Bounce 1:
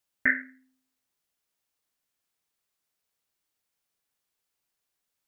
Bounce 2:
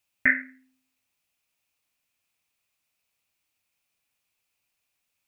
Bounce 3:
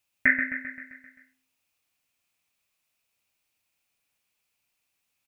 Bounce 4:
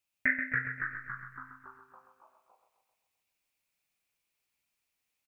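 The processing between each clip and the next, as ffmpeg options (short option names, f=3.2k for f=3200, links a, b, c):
-af "equalizer=f=100:t=o:w=0.33:g=6,equalizer=f=400:t=o:w=0.33:g=-6,equalizer=f=1.6k:t=o:w=0.33:g=-3,equalizer=f=2.5k:t=o:w=0.33:g=11,volume=2.5dB"
-af "aecho=1:1:131|262|393|524|655|786|917:0.398|0.227|0.129|0.0737|0.042|0.024|0.0137"
-filter_complex "[0:a]asplit=9[a][b][c][d][e][f][g][h][i];[b]adelay=280,afreqshift=-130,volume=-3.5dB[j];[c]adelay=560,afreqshift=-260,volume=-8.7dB[k];[d]adelay=840,afreqshift=-390,volume=-13.9dB[l];[e]adelay=1120,afreqshift=-520,volume=-19.1dB[m];[f]adelay=1400,afreqshift=-650,volume=-24.3dB[n];[g]adelay=1680,afreqshift=-780,volume=-29.5dB[o];[h]adelay=1960,afreqshift=-910,volume=-34.7dB[p];[i]adelay=2240,afreqshift=-1040,volume=-39.8dB[q];[a][j][k][l][m][n][o][p][q]amix=inputs=9:normalize=0,volume=-7dB"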